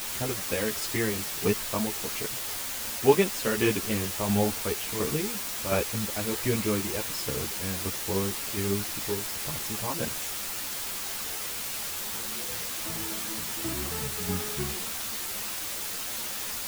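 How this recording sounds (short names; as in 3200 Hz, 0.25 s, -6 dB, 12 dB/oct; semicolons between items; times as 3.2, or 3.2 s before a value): tremolo saw down 1.4 Hz, depth 65%; a quantiser's noise floor 6-bit, dither triangular; a shimmering, thickened sound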